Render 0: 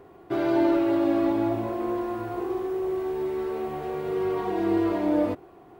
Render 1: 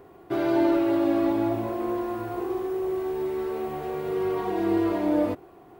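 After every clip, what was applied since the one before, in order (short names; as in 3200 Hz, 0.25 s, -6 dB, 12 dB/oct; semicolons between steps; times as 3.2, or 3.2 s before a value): high shelf 9600 Hz +6.5 dB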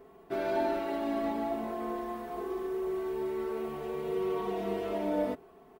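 comb 4.6 ms, depth 89%; gain -7 dB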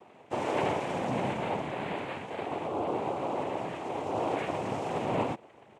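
noise vocoder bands 4; gain +1 dB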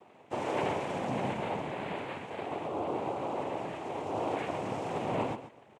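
feedback echo 0.136 s, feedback 15%, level -12 dB; gain -2.5 dB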